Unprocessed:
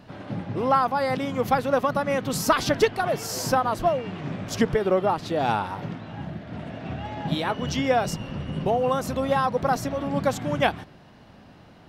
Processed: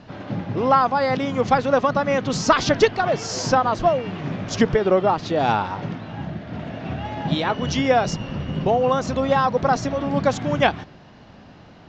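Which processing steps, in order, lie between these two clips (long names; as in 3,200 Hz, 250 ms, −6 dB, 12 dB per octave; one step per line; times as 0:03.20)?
Butterworth low-pass 7,100 Hz 72 dB per octave
level +4 dB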